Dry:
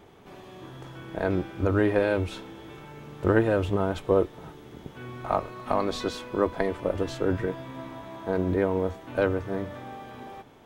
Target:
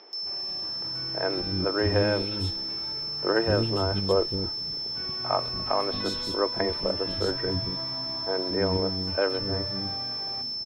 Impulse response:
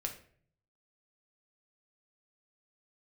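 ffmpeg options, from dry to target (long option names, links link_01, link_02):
-filter_complex "[0:a]aeval=exprs='val(0)+0.0316*sin(2*PI*5300*n/s)':channel_layout=same,acrossover=split=300|3200[link_01][link_02][link_03];[link_03]adelay=130[link_04];[link_01]adelay=230[link_05];[link_05][link_02][link_04]amix=inputs=3:normalize=0"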